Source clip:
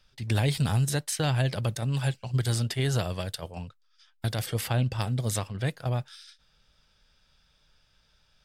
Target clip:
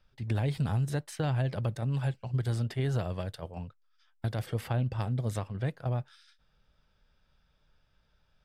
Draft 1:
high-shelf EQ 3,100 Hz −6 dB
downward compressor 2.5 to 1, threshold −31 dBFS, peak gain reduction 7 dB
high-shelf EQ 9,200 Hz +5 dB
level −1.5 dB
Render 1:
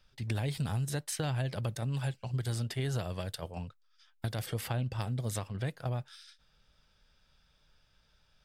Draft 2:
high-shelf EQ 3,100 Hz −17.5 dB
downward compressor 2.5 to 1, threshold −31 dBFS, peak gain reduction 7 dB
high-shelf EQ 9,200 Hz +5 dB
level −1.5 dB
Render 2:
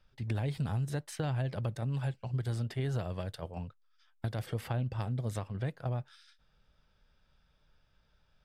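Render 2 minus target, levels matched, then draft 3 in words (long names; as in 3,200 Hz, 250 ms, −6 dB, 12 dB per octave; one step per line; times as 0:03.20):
downward compressor: peak gain reduction +4 dB
high-shelf EQ 3,100 Hz −17.5 dB
downward compressor 2.5 to 1, threshold −24.5 dBFS, peak gain reduction 3 dB
high-shelf EQ 9,200 Hz +5 dB
level −1.5 dB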